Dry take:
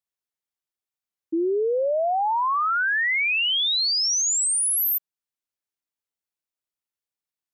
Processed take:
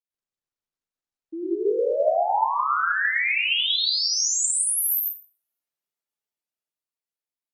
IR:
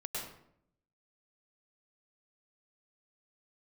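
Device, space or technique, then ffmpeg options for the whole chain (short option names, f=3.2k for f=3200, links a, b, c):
far-field microphone of a smart speaker: -filter_complex "[1:a]atrim=start_sample=2205[a];[0:a][a]afir=irnorm=-1:irlink=0,highpass=160,dynaudnorm=f=330:g=9:m=6.5dB,volume=-6.5dB" -ar 48000 -c:a libopus -b:a 24k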